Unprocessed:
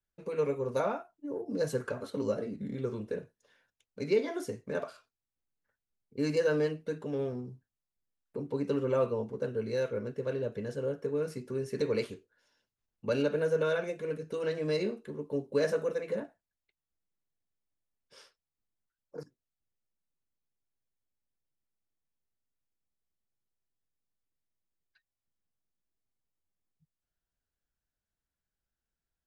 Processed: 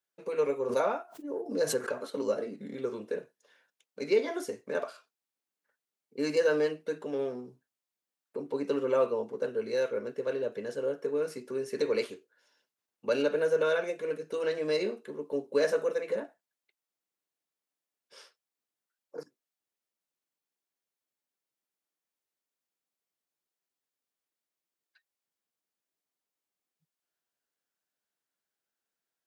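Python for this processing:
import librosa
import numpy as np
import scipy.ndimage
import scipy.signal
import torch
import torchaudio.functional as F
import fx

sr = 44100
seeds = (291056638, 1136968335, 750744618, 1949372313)

y = scipy.signal.sosfilt(scipy.signal.butter(2, 320.0, 'highpass', fs=sr, output='sos'), x)
y = fx.pre_swell(y, sr, db_per_s=110.0, at=(0.6, 1.91))
y = y * librosa.db_to_amplitude(3.0)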